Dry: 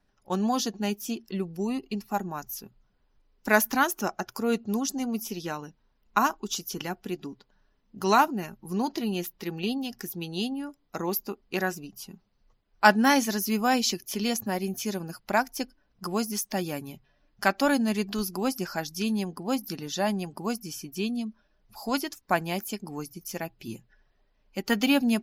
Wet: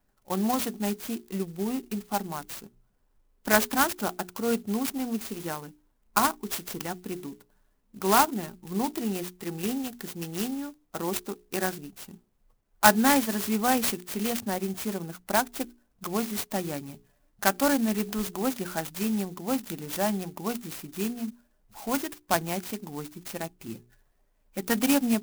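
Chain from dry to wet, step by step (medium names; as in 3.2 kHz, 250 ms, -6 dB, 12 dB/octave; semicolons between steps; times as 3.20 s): hum notches 60/120/180/240/300/360/420 Hz; sampling jitter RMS 0.074 ms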